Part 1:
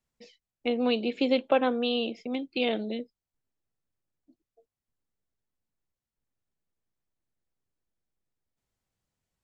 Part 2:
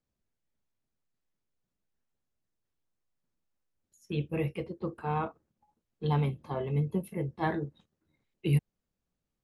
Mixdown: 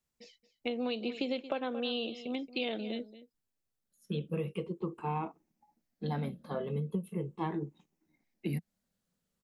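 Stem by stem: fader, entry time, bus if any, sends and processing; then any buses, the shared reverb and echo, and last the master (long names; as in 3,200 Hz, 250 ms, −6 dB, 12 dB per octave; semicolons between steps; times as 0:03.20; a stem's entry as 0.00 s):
−4.0 dB, 0.00 s, no send, echo send −16.5 dB, high-shelf EQ 4,000 Hz +6 dB
0:03.83 −13.5 dB → 0:04.05 −2 dB, 0.00 s, no send, no echo send, rippled gain that drifts along the octave scale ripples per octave 0.7, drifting −0.39 Hz, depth 10 dB; low shelf with overshoot 140 Hz −7 dB, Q 3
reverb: not used
echo: single-tap delay 226 ms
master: downward compressor 10 to 1, threshold −30 dBFS, peak gain reduction 10.5 dB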